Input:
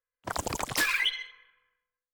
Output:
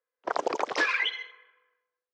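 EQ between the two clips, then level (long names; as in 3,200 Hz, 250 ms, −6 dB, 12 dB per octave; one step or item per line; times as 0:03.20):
Chebyshev band-pass filter 410–5,900 Hz, order 3
spectral tilt −4 dB per octave
+5.0 dB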